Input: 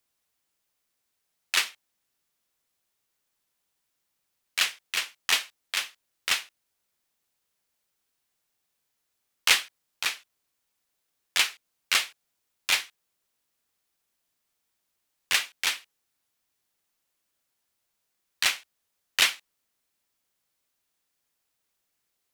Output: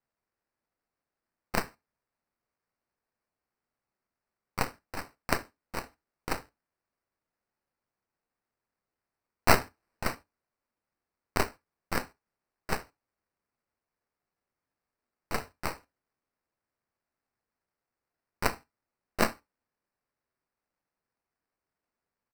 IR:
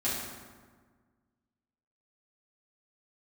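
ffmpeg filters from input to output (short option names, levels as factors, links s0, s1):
-filter_complex "[0:a]aecho=1:1:5.5:0.48,acrusher=samples=13:mix=1:aa=0.000001,aeval=exprs='0.501*(cos(1*acos(clip(val(0)/0.501,-1,1)))-cos(1*PI/2))+0.158*(cos(3*acos(clip(val(0)/0.501,-1,1)))-cos(3*PI/2))+0.0794*(cos(4*acos(clip(val(0)/0.501,-1,1)))-cos(4*PI/2))+0.0224*(cos(7*acos(clip(val(0)/0.501,-1,1)))-cos(7*PI/2))+0.0141*(cos(8*acos(clip(val(0)/0.501,-1,1)))-cos(8*PI/2))':c=same,asettb=1/sr,asplit=3[s0][s1][s2];[s0]atrim=end=9.484[s3];[s1]atrim=start=9.48:end=10.15,asetpts=PTS-STARTPTS,afade=t=in:d=0.004:c=qsin,afade=t=out:st=0.666:d=0.004:c=qsin,acontrast=89[s4];[s2]atrim=start=10.146[s5];[s3][s4]acrossfade=d=0.004:c1=hsin:c2=qsin[s6];[s6][s5]acrossfade=d=0.004:c1=qsin:c2=hsin,asplit=2[s7][s8];[1:a]atrim=start_sample=2205,atrim=end_sample=3528[s9];[s8][s9]afir=irnorm=-1:irlink=0,volume=0.0944[s10];[s7][s10]amix=inputs=2:normalize=0,volume=0.841"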